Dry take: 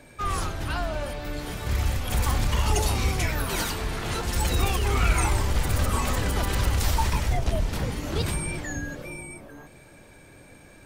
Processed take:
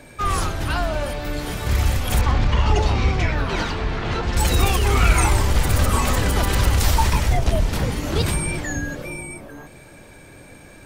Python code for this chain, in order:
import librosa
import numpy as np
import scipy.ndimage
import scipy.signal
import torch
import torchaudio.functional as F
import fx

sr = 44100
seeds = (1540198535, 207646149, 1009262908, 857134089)

y = fx.air_absorb(x, sr, metres=170.0, at=(2.21, 4.37))
y = y * 10.0 ** (6.0 / 20.0)